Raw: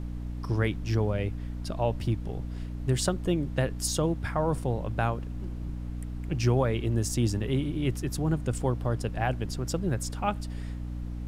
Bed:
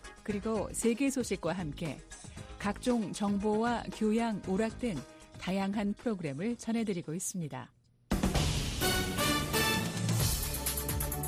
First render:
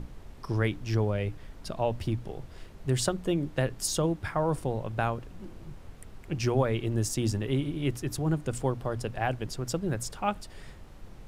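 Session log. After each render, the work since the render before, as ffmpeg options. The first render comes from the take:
-af "bandreject=f=60:t=h:w=6,bandreject=f=120:t=h:w=6,bandreject=f=180:t=h:w=6,bandreject=f=240:t=h:w=6,bandreject=f=300:t=h:w=6"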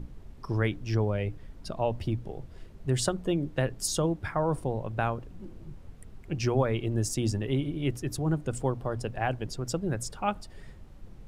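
-af "afftdn=nr=7:nf=-48"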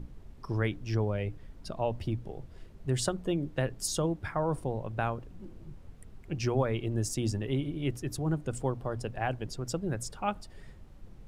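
-af "volume=0.75"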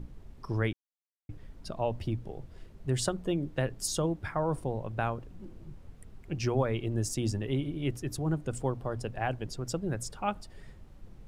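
-filter_complex "[0:a]asplit=3[s0][s1][s2];[s0]atrim=end=0.73,asetpts=PTS-STARTPTS,afade=t=out:st=0.726:d=0.004:c=hsin[s3];[s1]atrim=start=0.73:end=1.29,asetpts=PTS-STARTPTS,volume=0[s4];[s2]atrim=start=1.29,asetpts=PTS-STARTPTS,afade=t=in:d=0.004:c=hsin[s5];[s3][s4][s5]concat=n=3:v=0:a=1"

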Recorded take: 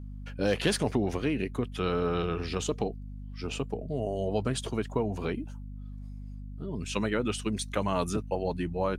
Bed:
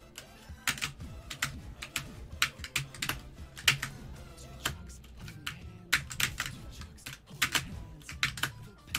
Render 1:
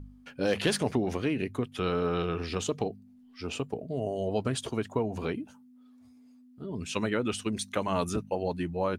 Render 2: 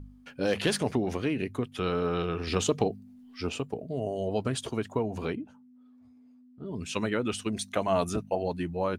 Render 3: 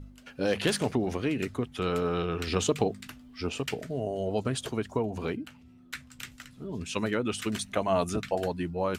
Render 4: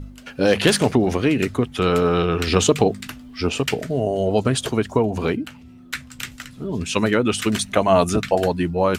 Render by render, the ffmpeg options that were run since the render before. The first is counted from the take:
-af "bandreject=f=50:t=h:w=4,bandreject=f=100:t=h:w=4,bandreject=f=150:t=h:w=4,bandreject=f=200:t=h:w=4"
-filter_complex "[0:a]asettb=1/sr,asplit=3[s0][s1][s2];[s0]atrim=end=5.354[s3];[s1]atrim=start=5.35:end=6.66,asetpts=PTS-STARTPTS,afade=t=in:d=0.004:c=qsin,afade=t=out:st=1.306:d=0.004:c=qsin,lowpass=f=1500:p=1[s4];[s2]atrim=start=6.656[s5];[s3][s4]acrossfade=d=0.004:c1=hsin:c2=qsin[s6];[s6][s5]acrossfade=d=0.004:c1=qsin:c2=hsin,asettb=1/sr,asplit=3[s7][s8][s9];[s7]atrim=end=7.494[s10];[s8]atrim=start=7.49:end=8.42,asetpts=PTS-STARTPTS,afade=t=in:d=0.004:c=qsin,afade=t=out:st=0.926:d=0.004:c=qsin,equalizer=f=680:w=7.8:g=10.5[s11];[s9]atrim=start=8.416[s12];[s10][s11]acrossfade=d=0.004:c1=hsin:c2=qsin[s13];[s13][s12]acrossfade=d=0.004:c1=qsin:c2=hsin,asplit=3[s14][s15][s16];[s14]atrim=end=2.472[s17];[s15]atrim=start=2.468:end=3.492,asetpts=PTS-STARTPTS,volume=1.68[s18];[s16]atrim=start=3.488[s19];[s17][s18]acrossfade=d=0.004:c1=hsin:c2=hsin[s20];[s20][s19]acrossfade=d=0.004:c1=hsin:c2=hsin"
-filter_complex "[1:a]volume=0.251[s0];[0:a][s0]amix=inputs=2:normalize=0"
-af "volume=3.35,alimiter=limit=0.794:level=0:latency=1"

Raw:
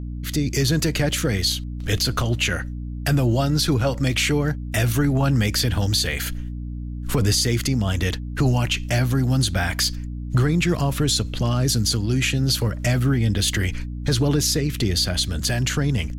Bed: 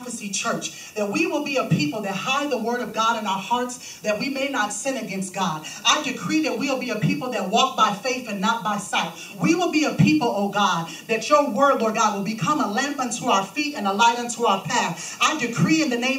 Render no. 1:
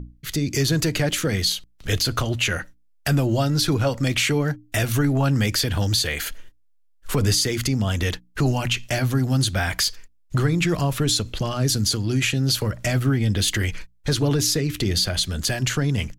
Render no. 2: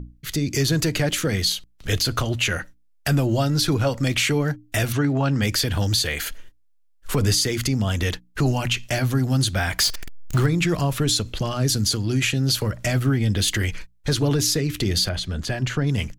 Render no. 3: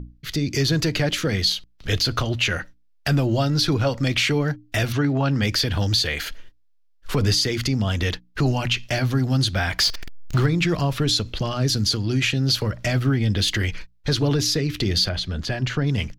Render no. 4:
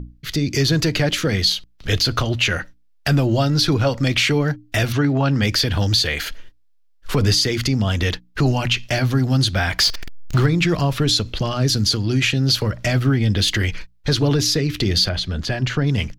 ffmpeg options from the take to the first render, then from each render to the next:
-af "bandreject=f=60:t=h:w=6,bandreject=f=120:t=h:w=6,bandreject=f=180:t=h:w=6,bandreject=f=240:t=h:w=6,bandreject=f=300:t=h:w=6"
-filter_complex "[0:a]asplit=3[s0][s1][s2];[s0]afade=t=out:st=4.92:d=0.02[s3];[s1]highpass=120,lowpass=5400,afade=t=in:st=4.92:d=0.02,afade=t=out:st=5.41:d=0.02[s4];[s2]afade=t=in:st=5.41:d=0.02[s5];[s3][s4][s5]amix=inputs=3:normalize=0,asettb=1/sr,asplit=3[s6][s7][s8];[s6]atrim=end=9.794[s9];[s7]atrim=start=9.79:end=10.46,asetpts=PTS-STARTPTS,afade=t=in:d=0.004:c=qsin,afade=t=out:st=0.666:d=0.004:c=qsin,aeval=exprs='val(0)+0.5*0.0531*sgn(val(0))':c=same[s10];[s8]atrim=start=10.456[s11];[s9][s10]acrossfade=d=0.004:c1=hsin:c2=qsin[s12];[s12][s11]acrossfade=d=0.004:c1=qsin:c2=hsin,asettb=1/sr,asplit=3[s13][s14][s15];[s13]atrim=end=15.094[s16];[s14]atrim=start=15.09:end=15.87,asetpts=PTS-STARTPTS,afade=t=in:d=0.004:c=qsin,afade=t=out:st=0.776:d=0.004:c=qsin,lowpass=f=2200:p=1[s17];[s15]atrim=start=15.866[s18];[s16][s17]acrossfade=d=0.004:c1=hsin:c2=qsin[s19];[s19][s18]acrossfade=d=0.004:c1=qsin:c2=hsin"
-af "highshelf=f=6300:t=q:w=1.5:g=-7"
-af "volume=1.41"

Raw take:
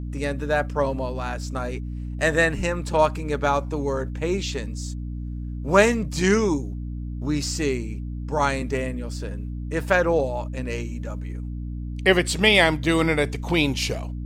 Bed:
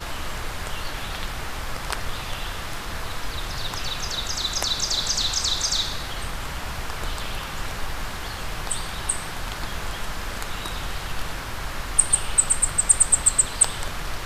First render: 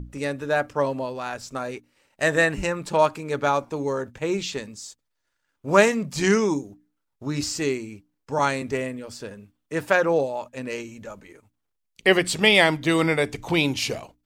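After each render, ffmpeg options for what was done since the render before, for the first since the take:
-af "bandreject=f=60:t=h:w=6,bandreject=f=120:t=h:w=6,bandreject=f=180:t=h:w=6,bandreject=f=240:t=h:w=6,bandreject=f=300:t=h:w=6"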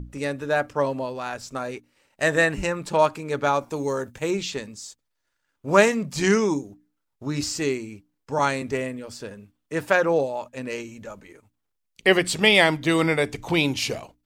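-filter_complex "[0:a]asettb=1/sr,asplit=3[s0][s1][s2];[s0]atrim=end=3.614[s3];[s1]atrim=start=3.61:end=4.31,asetpts=PTS-STARTPTS,afade=t=in:d=0.004:c=qsin,afade=t=out:st=0.696:d=0.004:c=qsin,highshelf=f=6700:g=12[s4];[s2]atrim=start=4.306[s5];[s3][s4]acrossfade=d=0.004:c1=hsin:c2=qsin[s6];[s6][s5]acrossfade=d=0.004:c1=qsin:c2=hsin"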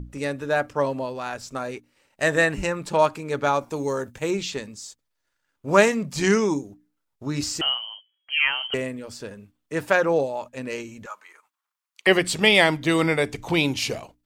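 -filter_complex "[0:a]asettb=1/sr,asplit=3[s0][s1][s2];[s0]atrim=end=7.614[s3];[s1]atrim=start=7.61:end=8.74,asetpts=PTS-STARTPTS,afade=t=in:d=0.004:c=qsin,afade=t=out:st=1.126:d=0.004:c=qsin,lowpass=f=2800:t=q:w=0.5098,lowpass=f=2800:t=q:w=0.6013,lowpass=f=2800:t=q:w=0.9,lowpass=f=2800:t=q:w=2.563,afreqshift=-3300[s4];[s2]atrim=start=8.736[s5];[s3][s4]acrossfade=d=0.004:c1=hsin:c2=qsin[s6];[s6][s5]acrossfade=d=0.004:c1=qsin:c2=hsin,asettb=1/sr,asplit=3[s7][s8][s9];[s7]atrim=end=11.064[s10];[s8]atrim=start=11.06:end=12.07,asetpts=PTS-STARTPTS,afade=t=in:d=0.004:c=qsin,afade=t=out:st=1.006:d=0.004:c=qsin,highpass=f=1100:t=q:w=2.7[s11];[s9]atrim=start=12.066[s12];[s10][s11]acrossfade=d=0.004:c1=hsin:c2=qsin[s13];[s13][s12]acrossfade=d=0.004:c1=qsin:c2=hsin"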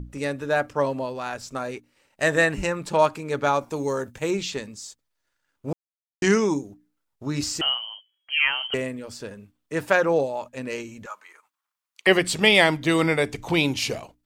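-filter_complex "[0:a]asplit=3[s0][s1][s2];[s0]atrim=end=5.73,asetpts=PTS-STARTPTS,afade=t=out:st=5.726:d=0.004:c=hsin[s3];[s1]atrim=start=5.73:end=6.22,asetpts=PTS-STARTPTS,volume=0[s4];[s2]atrim=start=6.22,asetpts=PTS-STARTPTS,afade=t=in:d=0.004:c=hsin[s5];[s3][s4][s5]concat=n=3:v=0:a=1"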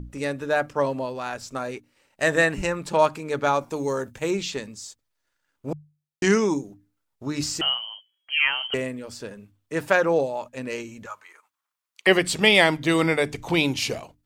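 -af "bandreject=f=50:t=h:w=6,bandreject=f=100:t=h:w=6,bandreject=f=150:t=h:w=6"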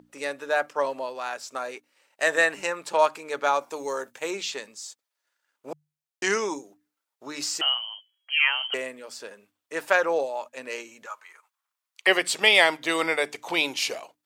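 -af "highpass=530"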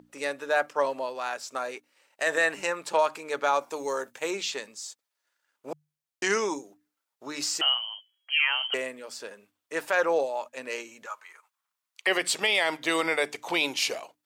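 -af "alimiter=limit=0.224:level=0:latency=1:release=46"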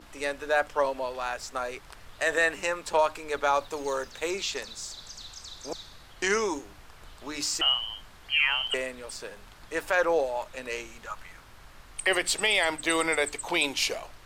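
-filter_complex "[1:a]volume=0.1[s0];[0:a][s0]amix=inputs=2:normalize=0"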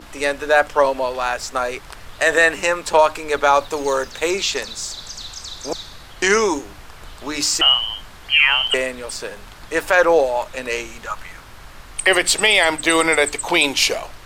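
-af "volume=3.35,alimiter=limit=0.708:level=0:latency=1"

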